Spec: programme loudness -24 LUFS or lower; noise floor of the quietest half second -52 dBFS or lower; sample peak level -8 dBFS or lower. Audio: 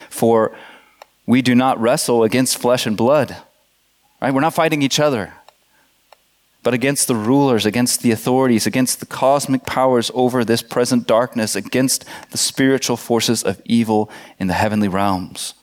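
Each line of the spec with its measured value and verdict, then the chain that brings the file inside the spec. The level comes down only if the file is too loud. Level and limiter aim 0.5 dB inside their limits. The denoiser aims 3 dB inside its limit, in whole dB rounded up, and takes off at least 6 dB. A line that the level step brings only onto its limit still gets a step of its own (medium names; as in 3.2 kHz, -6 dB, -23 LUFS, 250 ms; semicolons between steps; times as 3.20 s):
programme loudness -17.0 LUFS: fail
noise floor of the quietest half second -60 dBFS: pass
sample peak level -4.0 dBFS: fail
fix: trim -7.5 dB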